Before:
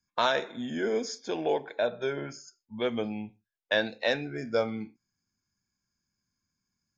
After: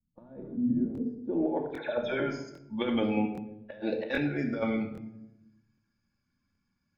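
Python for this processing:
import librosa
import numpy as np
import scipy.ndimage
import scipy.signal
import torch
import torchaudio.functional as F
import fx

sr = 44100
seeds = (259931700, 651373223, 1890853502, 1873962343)

y = fx.spec_quant(x, sr, step_db=15)
y = fx.peak_eq(y, sr, hz=450.0, db=13.0, octaves=1.2, at=(3.17, 4.09))
y = fx.over_compress(y, sr, threshold_db=-30.0, ratio=-0.5)
y = fx.transient(y, sr, attack_db=3, sustain_db=8, at=(0.4, 1.11), fade=0.02)
y = fx.dispersion(y, sr, late='lows', ms=102.0, hz=2700.0, at=(1.66, 2.2))
y = fx.filter_sweep_lowpass(y, sr, from_hz=200.0, to_hz=3100.0, start_s=1.21, end_s=1.85, q=0.99)
y = fx.room_shoebox(y, sr, seeds[0], volume_m3=3100.0, walls='furnished', distance_m=2.4)
y = fx.buffer_crackle(y, sr, first_s=0.93, period_s=0.8, block=1024, kind='repeat')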